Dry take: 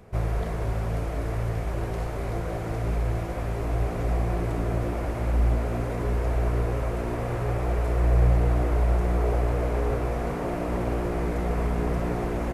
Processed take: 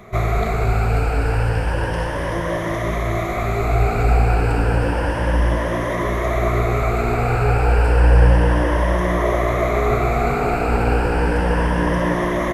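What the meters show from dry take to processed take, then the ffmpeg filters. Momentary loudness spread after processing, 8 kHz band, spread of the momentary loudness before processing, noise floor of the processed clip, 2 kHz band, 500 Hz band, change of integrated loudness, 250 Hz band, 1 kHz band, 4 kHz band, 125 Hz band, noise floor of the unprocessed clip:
6 LU, no reading, 6 LU, -23 dBFS, +14.5 dB, +9.0 dB, +8.0 dB, +8.0 dB, +12.0 dB, +12.0 dB, +7.0 dB, -30 dBFS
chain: -af "afftfilt=real='re*pow(10,12/40*sin(2*PI*(1.2*log(max(b,1)*sr/1024/100)/log(2)-(0.31)*(pts-256)/sr)))':imag='im*pow(10,12/40*sin(2*PI*(1.2*log(max(b,1)*sr/1024/100)/log(2)-(0.31)*(pts-256)/sr)))':win_size=1024:overlap=0.75,equalizer=f=1800:w=0.5:g=7.5,volume=1.88"

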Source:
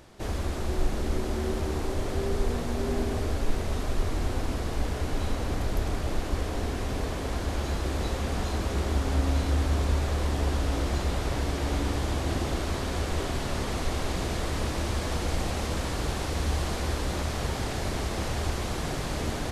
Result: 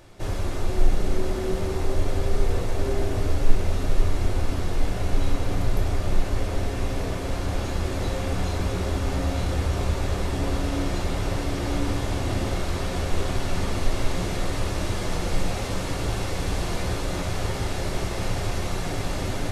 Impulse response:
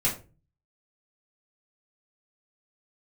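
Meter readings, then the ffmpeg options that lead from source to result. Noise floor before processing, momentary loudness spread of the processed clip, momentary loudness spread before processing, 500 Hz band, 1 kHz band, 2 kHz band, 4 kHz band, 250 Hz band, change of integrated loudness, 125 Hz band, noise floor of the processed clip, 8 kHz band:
-32 dBFS, 2 LU, 4 LU, +2.5 dB, +1.5 dB, +2.0 dB, +1.5 dB, +2.0 dB, +2.0 dB, +2.5 dB, -29 dBFS, +1.5 dB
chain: -filter_complex "[0:a]asplit=2[s0][s1];[1:a]atrim=start_sample=2205[s2];[s1][s2]afir=irnorm=-1:irlink=0,volume=0.316[s3];[s0][s3]amix=inputs=2:normalize=0,volume=0.794"

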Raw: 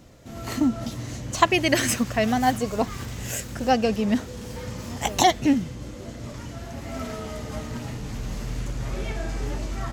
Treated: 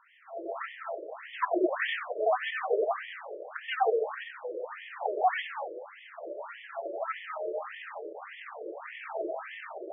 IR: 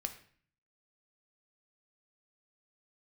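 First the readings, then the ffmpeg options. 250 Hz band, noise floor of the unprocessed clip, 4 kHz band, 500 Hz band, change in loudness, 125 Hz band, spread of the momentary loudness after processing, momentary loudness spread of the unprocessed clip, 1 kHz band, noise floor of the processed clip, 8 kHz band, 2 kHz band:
-16.5 dB, -38 dBFS, -13.0 dB, -2.5 dB, -8.0 dB, under -40 dB, 14 LU, 16 LU, -6.0 dB, -50 dBFS, under -40 dB, -5.0 dB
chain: -filter_complex "[0:a]highshelf=f=5700:t=q:w=3:g=11.5,aeval=exprs='(tanh(15.8*val(0)+0.3)-tanh(0.3))/15.8':c=same,asplit=2[s0][s1];[1:a]atrim=start_sample=2205,adelay=92[s2];[s1][s2]afir=irnorm=-1:irlink=0,volume=0.944[s3];[s0][s3]amix=inputs=2:normalize=0,afftfilt=real='re*between(b*sr/1024,440*pow(2500/440,0.5+0.5*sin(2*PI*1.7*pts/sr))/1.41,440*pow(2500/440,0.5+0.5*sin(2*PI*1.7*pts/sr))*1.41)':imag='im*between(b*sr/1024,440*pow(2500/440,0.5+0.5*sin(2*PI*1.7*pts/sr))/1.41,440*pow(2500/440,0.5+0.5*sin(2*PI*1.7*pts/sr))*1.41)':win_size=1024:overlap=0.75,volume=2"

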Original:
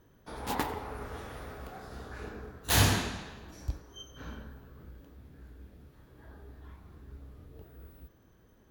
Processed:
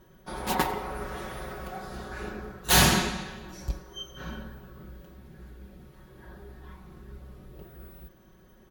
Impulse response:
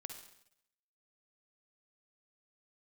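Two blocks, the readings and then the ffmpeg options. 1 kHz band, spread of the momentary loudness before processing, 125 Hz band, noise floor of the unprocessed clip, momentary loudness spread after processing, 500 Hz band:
+6.5 dB, 25 LU, +1.0 dB, -62 dBFS, 26 LU, +5.5 dB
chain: -af "aecho=1:1:5.4:0.83,volume=1.68" -ar 48000 -c:a libmp3lame -b:a 128k

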